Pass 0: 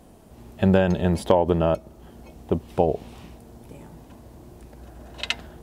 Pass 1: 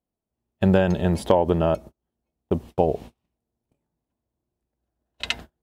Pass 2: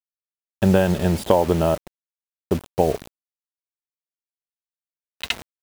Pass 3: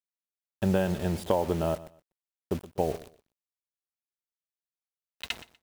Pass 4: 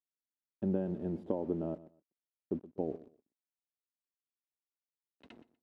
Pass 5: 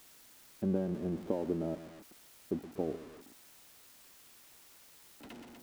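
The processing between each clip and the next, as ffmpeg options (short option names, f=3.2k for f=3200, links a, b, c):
-af "agate=range=-37dB:threshold=-36dB:ratio=16:detection=peak"
-af "acrusher=bits=5:mix=0:aa=0.000001,volume=1.5dB"
-af "aecho=1:1:122|244:0.126|0.029,volume=-9dB"
-af "bandpass=f=280:t=q:w=2.3:csg=0"
-af "aeval=exprs='val(0)+0.5*0.00447*sgn(val(0))':c=same"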